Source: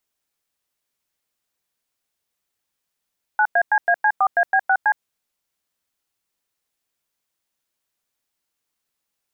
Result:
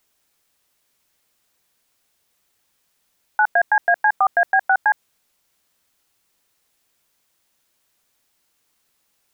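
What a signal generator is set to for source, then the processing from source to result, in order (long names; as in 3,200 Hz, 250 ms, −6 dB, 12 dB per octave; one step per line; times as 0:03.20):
touch tones "9ACAC4AB6C", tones 64 ms, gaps 99 ms, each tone −16 dBFS
in parallel at −2.5 dB: compressor whose output falls as the input rises −28 dBFS, ratio −1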